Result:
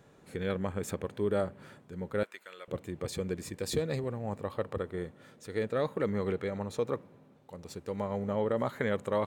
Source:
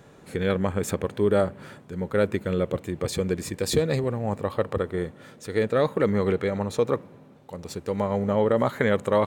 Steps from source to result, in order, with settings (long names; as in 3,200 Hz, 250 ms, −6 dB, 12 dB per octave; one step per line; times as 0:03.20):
0:02.23–0:02.68: high-pass filter 1,200 Hz 12 dB per octave
level −8.5 dB